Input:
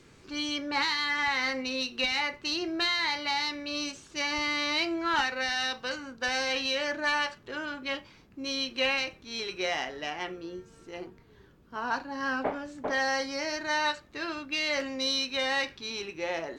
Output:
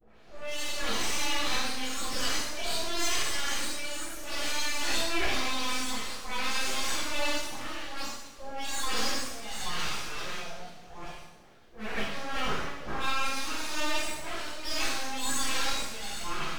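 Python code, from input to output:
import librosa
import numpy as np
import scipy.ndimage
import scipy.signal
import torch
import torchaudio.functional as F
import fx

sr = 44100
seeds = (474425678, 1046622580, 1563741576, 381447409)

y = fx.spec_delay(x, sr, highs='late', ms=356)
y = np.abs(y)
y = fx.rev_double_slope(y, sr, seeds[0], early_s=0.87, late_s=2.8, knee_db=-18, drr_db=-9.0)
y = y * librosa.db_to_amplitude(-6.0)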